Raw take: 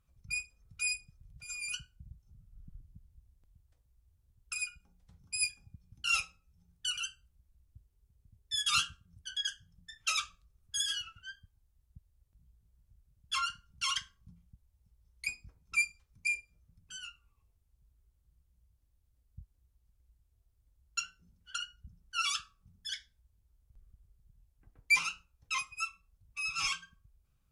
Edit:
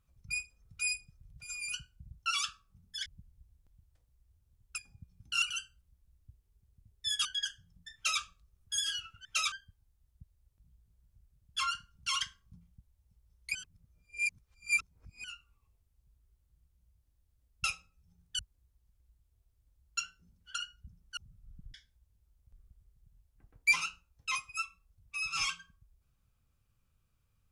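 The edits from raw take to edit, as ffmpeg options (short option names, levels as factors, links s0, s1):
-filter_complex "[0:a]asplit=14[s0][s1][s2][s3][s4][s5][s6][s7][s8][s9][s10][s11][s12][s13];[s0]atrim=end=2.262[s14];[s1]atrim=start=22.168:end=22.972[s15];[s2]atrim=start=2.828:end=4.552[s16];[s3]atrim=start=5.498:end=6.142[s17];[s4]atrim=start=6.888:end=8.722[s18];[s5]atrim=start=9.268:end=11.272[s19];[s6]atrim=start=9.968:end=10.242[s20];[s7]atrim=start=11.268:end=15.302[s21];[s8]atrim=start=15.298:end=16.992,asetpts=PTS-STARTPTS,areverse[s22];[s9]atrim=start=16.988:end=19.392[s23];[s10]atrim=start=6.138:end=6.892[s24];[s11]atrim=start=19.388:end=22.172[s25];[s12]atrim=start=2.258:end=2.832[s26];[s13]atrim=start=22.968[s27];[s14][s15]acrossfade=d=0.004:c1=hsin:c2=hsin[s28];[s28][s16]acrossfade=d=0.004:c1=hsin:c2=hsin[s29];[s29][s17]acrossfade=d=0.004:c1=hsin:c2=hsin[s30];[s30][s18]acrossfade=d=0.004:c1=hsin:c2=hsin[s31];[s31][s19]acrossfade=d=0.004:c1=hsin:c2=hsin[s32];[s32][s20]acrossfade=d=0.004:c1=hsin:c2=hsin[s33];[s33][s21]acrossfade=d=0.004:c1=hsin:c2=hsin[s34];[s34][s22]acrossfade=d=0.004:c1=hsin:c2=hsin[s35];[s35][s23]acrossfade=d=0.004:c1=hsin:c2=hsin[s36];[s36][s24]acrossfade=d=0.004:c1=hsin:c2=hsin[s37];[s37][s25]acrossfade=d=0.004:c1=hsin:c2=hsin[s38];[s38][s26]acrossfade=d=0.004:c1=hsin:c2=hsin[s39];[s39][s27]acrossfade=d=0.004:c1=hsin:c2=hsin"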